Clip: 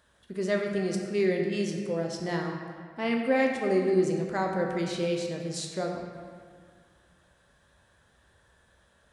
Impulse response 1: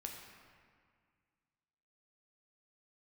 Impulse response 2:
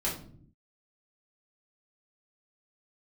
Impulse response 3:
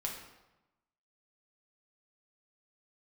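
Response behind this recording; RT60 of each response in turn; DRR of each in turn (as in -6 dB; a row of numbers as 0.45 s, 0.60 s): 1; 1.9 s, no single decay rate, 1.0 s; 0.5 dB, -7.0 dB, -1.5 dB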